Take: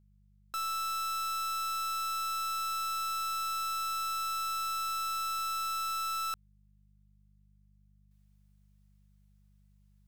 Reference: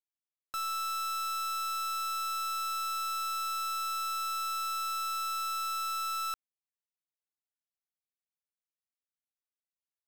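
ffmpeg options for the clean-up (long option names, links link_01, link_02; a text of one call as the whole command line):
ffmpeg -i in.wav -af "bandreject=frequency=49.9:width_type=h:width=4,bandreject=frequency=99.8:width_type=h:width=4,bandreject=frequency=149.7:width_type=h:width=4,bandreject=frequency=199.6:width_type=h:width=4,asetnsamples=nb_out_samples=441:pad=0,asendcmd='8.11 volume volume -11dB',volume=0dB" out.wav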